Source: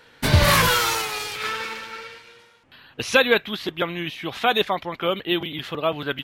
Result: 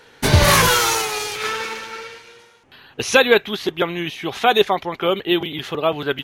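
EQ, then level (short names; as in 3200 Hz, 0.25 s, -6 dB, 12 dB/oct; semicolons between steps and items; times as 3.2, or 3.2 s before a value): thirty-one-band EQ 400 Hz +7 dB, 800 Hz +4 dB, 6300 Hz +6 dB, 10000 Hz +4 dB; +2.5 dB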